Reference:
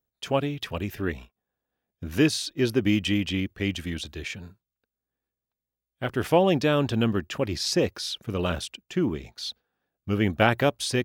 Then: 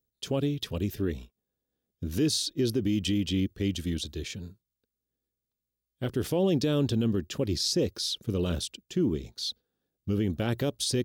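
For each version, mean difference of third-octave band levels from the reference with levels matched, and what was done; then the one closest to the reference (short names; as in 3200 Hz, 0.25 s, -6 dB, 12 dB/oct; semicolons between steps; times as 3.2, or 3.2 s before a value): 4.0 dB: band shelf 1300 Hz -11 dB 2.4 oct; limiter -19.5 dBFS, peak gain reduction 9.5 dB; gain +1.5 dB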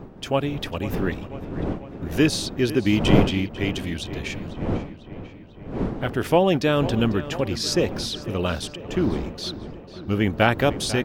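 5.5 dB: wind noise 330 Hz -32 dBFS; on a send: darkening echo 0.496 s, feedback 67%, low-pass 4200 Hz, level -14.5 dB; on the sum: gain +2 dB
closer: first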